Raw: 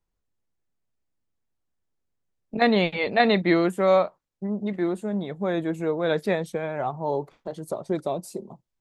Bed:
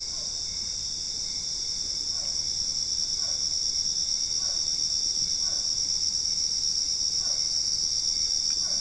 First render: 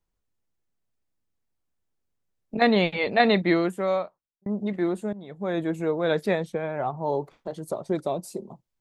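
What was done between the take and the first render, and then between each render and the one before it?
3.37–4.46 fade out; 5.13–5.62 fade in, from -18 dB; 6.45–6.98 high shelf 4400 Hz -9 dB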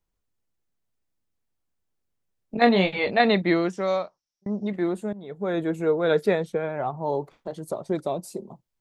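2.6–3.11 doubler 21 ms -6.5 dB; 3.66–4.67 synth low-pass 5600 Hz, resonance Q 9.6; 5.23–6.69 small resonant body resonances 430/1400 Hz, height 8 dB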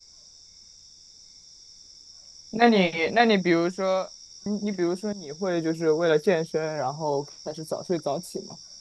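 add bed -19 dB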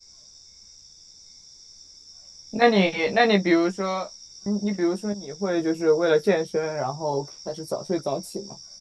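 doubler 15 ms -5 dB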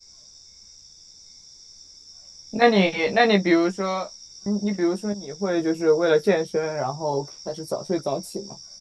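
gain +1 dB

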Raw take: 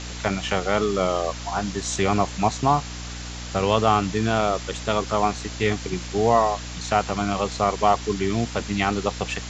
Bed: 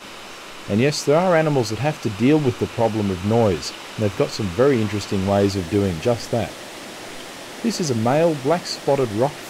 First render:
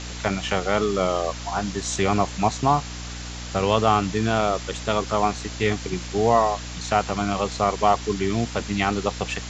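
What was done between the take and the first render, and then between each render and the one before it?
nothing audible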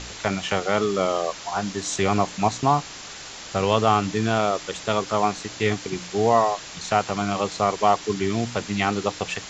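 de-hum 60 Hz, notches 5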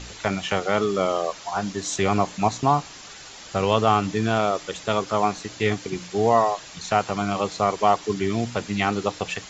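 denoiser 6 dB, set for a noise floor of -39 dBFS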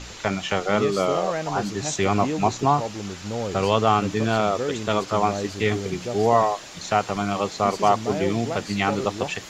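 add bed -11.5 dB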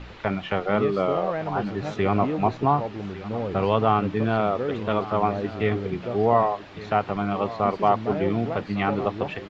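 air absorption 370 m; echo 1.155 s -16 dB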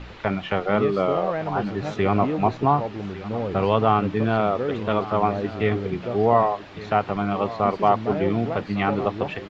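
gain +1.5 dB

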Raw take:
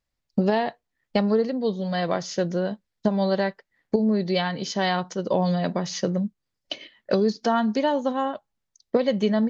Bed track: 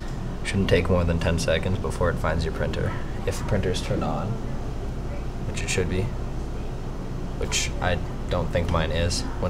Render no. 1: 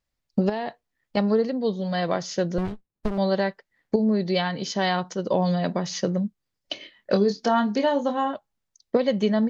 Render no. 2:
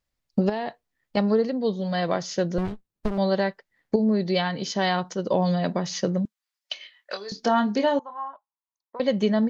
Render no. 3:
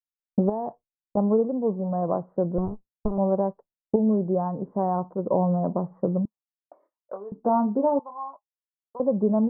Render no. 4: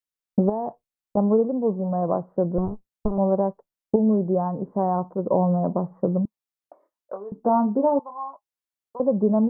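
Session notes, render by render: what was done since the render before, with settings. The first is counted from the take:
0.49–1.17 compressor 4:1, threshold -24 dBFS; 2.58–3.18 running maximum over 65 samples; 6.73–8.35 doubler 25 ms -7.5 dB
6.25–7.32 HPF 1100 Hz; 7.99–9 band-pass 1000 Hz, Q 7.3
expander -39 dBFS; steep low-pass 1100 Hz 48 dB/oct
gain +2 dB

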